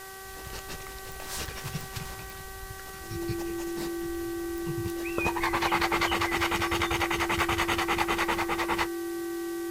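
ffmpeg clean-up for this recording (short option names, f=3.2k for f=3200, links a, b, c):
-af "adeclick=t=4,bandreject=f=384.2:t=h:w=4,bandreject=f=768.4:t=h:w=4,bandreject=f=1.1526k:t=h:w=4,bandreject=f=1.5368k:t=h:w=4,bandreject=f=1.921k:t=h:w=4,bandreject=f=340:w=30,afwtdn=0.005"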